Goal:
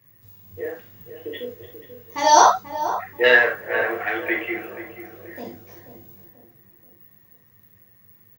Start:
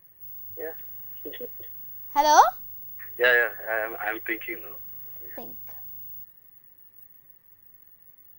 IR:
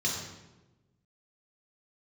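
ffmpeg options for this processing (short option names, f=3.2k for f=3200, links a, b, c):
-filter_complex "[0:a]asplit=2[a][b];[b]adelay=485,lowpass=f=1.2k:p=1,volume=-10dB,asplit=2[c][d];[d]adelay=485,lowpass=f=1.2k:p=1,volume=0.48,asplit=2[e][f];[f]adelay=485,lowpass=f=1.2k:p=1,volume=0.48,asplit=2[g][h];[h]adelay=485,lowpass=f=1.2k:p=1,volume=0.48,asplit=2[i][j];[j]adelay=485,lowpass=f=1.2k:p=1,volume=0.48[k];[a][c][e][g][i][k]amix=inputs=6:normalize=0[l];[1:a]atrim=start_sample=2205,atrim=end_sample=3969[m];[l][m]afir=irnorm=-1:irlink=0,volume=-1dB"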